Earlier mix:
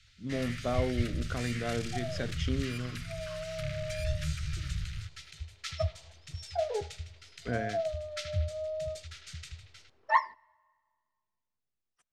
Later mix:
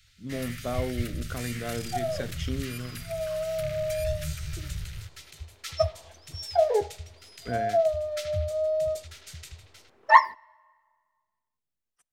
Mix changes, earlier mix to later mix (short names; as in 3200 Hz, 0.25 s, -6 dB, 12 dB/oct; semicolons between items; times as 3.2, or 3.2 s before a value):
second sound +9.5 dB; master: remove LPF 6400 Hz 12 dB/oct